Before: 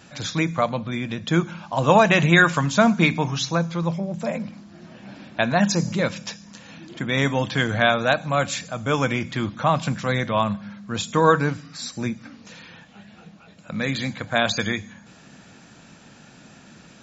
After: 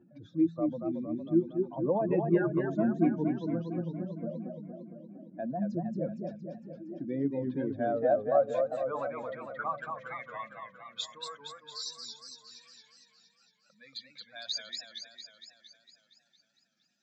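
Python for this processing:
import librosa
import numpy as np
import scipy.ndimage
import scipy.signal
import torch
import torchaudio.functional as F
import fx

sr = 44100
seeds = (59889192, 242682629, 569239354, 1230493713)

y = fx.spec_expand(x, sr, power=2.3)
y = fx.filter_sweep_bandpass(y, sr, from_hz=340.0, to_hz=5000.0, start_s=7.6, end_s=11.18, q=3.9)
y = fx.echo_warbled(y, sr, ms=230, feedback_pct=63, rate_hz=2.8, cents=150, wet_db=-5.0)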